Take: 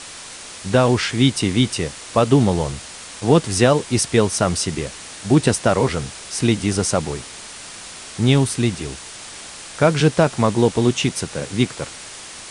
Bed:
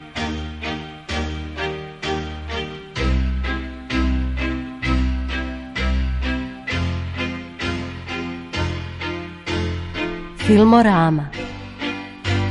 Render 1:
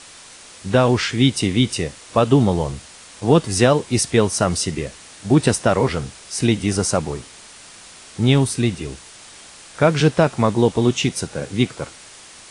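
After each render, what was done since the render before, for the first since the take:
noise reduction from a noise print 6 dB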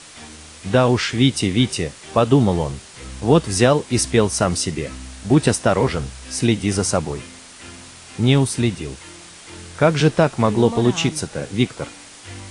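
mix in bed −16.5 dB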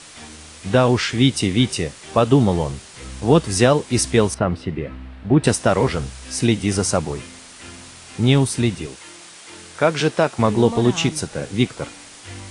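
0:04.34–0:05.44: high-frequency loss of the air 460 metres
0:08.86–0:10.39: high-pass filter 320 Hz 6 dB per octave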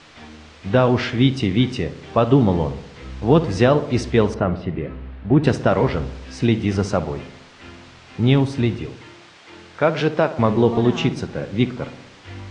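high-frequency loss of the air 190 metres
feedback echo with a low-pass in the loop 61 ms, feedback 66%, low-pass 1,700 Hz, level −13 dB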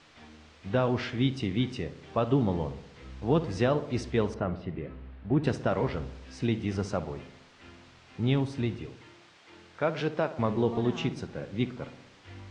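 level −10.5 dB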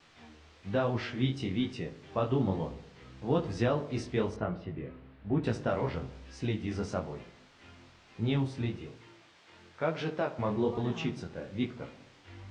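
pitch vibrato 1.6 Hz 27 cents
chorus effect 1.1 Hz, delay 17.5 ms, depth 6.8 ms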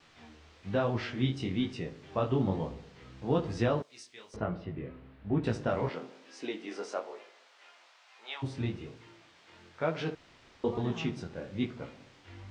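0:03.82–0:04.34: first difference
0:05.88–0:08.42: high-pass filter 210 Hz → 790 Hz 24 dB per octave
0:10.15–0:10.64: fill with room tone

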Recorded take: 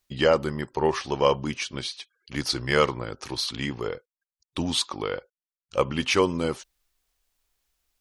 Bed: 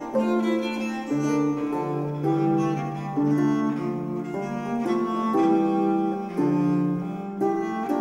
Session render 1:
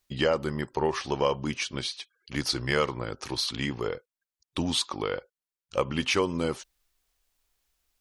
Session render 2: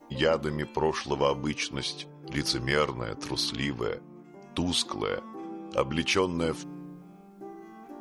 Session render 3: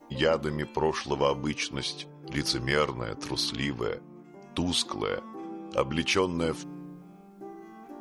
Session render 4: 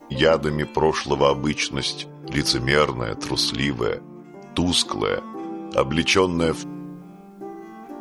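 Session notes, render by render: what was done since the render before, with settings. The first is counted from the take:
downward compressor 2 to 1, threshold −24 dBFS, peak gain reduction 5.5 dB
mix in bed −19.5 dB
no processing that can be heard
level +7.5 dB; brickwall limiter −3 dBFS, peak gain reduction 1.5 dB

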